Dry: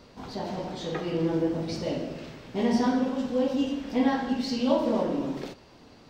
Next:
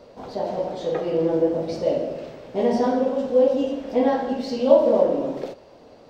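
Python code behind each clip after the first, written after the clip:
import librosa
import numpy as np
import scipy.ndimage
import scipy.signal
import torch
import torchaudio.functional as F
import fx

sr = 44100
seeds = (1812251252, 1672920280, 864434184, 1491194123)

y = fx.peak_eq(x, sr, hz=560.0, db=14.5, octaves=1.1)
y = F.gain(torch.from_numpy(y), -2.5).numpy()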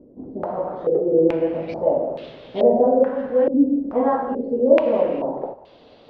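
y = fx.filter_held_lowpass(x, sr, hz=2.3, low_hz=300.0, high_hz=3500.0)
y = F.gain(torch.from_numpy(y), -1.5).numpy()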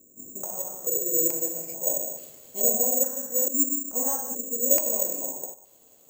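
y = (np.kron(scipy.signal.resample_poly(x, 1, 6), np.eye(6)[0]) * 6)[:len(x)]
y = F.gain(torch.from_numpy(y), -15.0).numpy()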